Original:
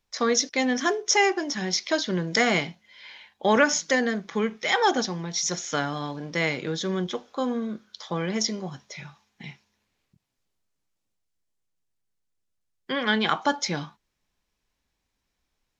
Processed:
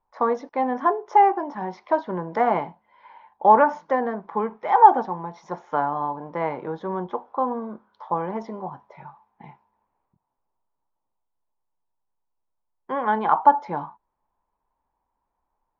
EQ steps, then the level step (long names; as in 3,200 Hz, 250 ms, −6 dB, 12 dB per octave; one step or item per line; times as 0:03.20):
low-pass with resonance 930 Hz, resonance Q 5.6
parametric band 120 Hz −6 dB 2.8 octaves
0.0 dB